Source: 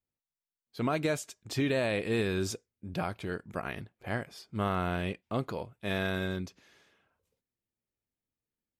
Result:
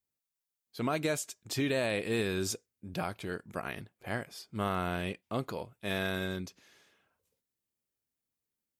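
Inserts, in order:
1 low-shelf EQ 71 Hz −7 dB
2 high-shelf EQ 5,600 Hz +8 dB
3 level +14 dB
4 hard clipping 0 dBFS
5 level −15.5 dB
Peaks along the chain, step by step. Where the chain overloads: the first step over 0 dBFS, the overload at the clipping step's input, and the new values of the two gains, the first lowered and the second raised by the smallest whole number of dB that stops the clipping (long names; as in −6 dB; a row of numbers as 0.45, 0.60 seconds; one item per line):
−18.5, −17.5, −3.5, −3.5, −19.0 dBFS
no step passes full scale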